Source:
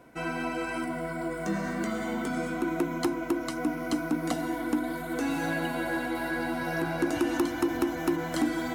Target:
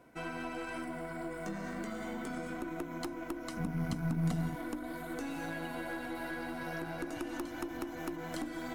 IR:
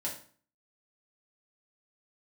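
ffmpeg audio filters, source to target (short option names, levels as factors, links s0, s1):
-filter_complex "[0:a]acompressor=threshold=0.0316:ratio=6,asettb=1/sr,asplit=3[s0][s1][s2];[s0]atrim=end=3.574[s3];[s1]atrim=start=3.57:end=4.56,asetpts=PTS-STARTPTS,afade=t=in:d=0.004:c=qsin,afade=t=out:st=0.986:d=0.004:c=qsin,lowshelf=f=240:t=q:w=3:g=11.5[s4];[s2]atrim=start=4.556[s5];[s3][s4]acrossfade=d=0.004:c1=hsin:c2=qsin[s6];[s6][s5]acrossfade=d=0.004:c1=qsin:c2=hsin,aeval=exprs='0.178*(cos(1*acos(clip(val(0)/0.178,-1,1)))-cos(1*PI/2))+0.00891*(cos(8*acos(clip(val(0)/0.178,-1,1)))-cos(8*PI/2))':c=same,volume=0.501"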